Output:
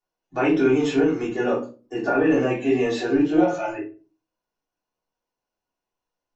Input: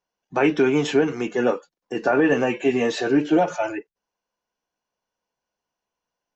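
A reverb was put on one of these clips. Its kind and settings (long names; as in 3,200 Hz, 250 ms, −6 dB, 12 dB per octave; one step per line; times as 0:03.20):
rectangular room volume 180 cubic metres, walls furnished, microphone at 3.3 metres
level −9.5 dB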